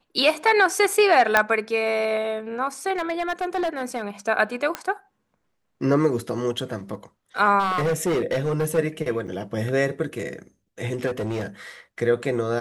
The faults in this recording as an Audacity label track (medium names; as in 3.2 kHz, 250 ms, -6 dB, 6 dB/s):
1.370000	1.370000	pop -3 dBFS
2.960000	4.080000	clipped -20.5 dBFS
4.750000	4.750000	pop -11 dBFS
7.590000	8.790000	clipped -19 dBFS
9.270000	9.280000	dropout 7.1 ms
11.060000	11.460000	clipped -23 dBFS